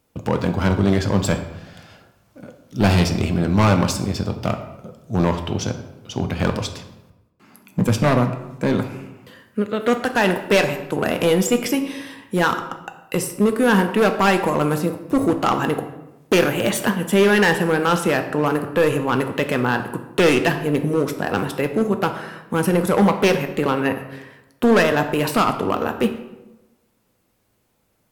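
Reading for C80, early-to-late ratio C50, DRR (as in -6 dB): 11.5 dB, 10.0 dB, 6.0 dB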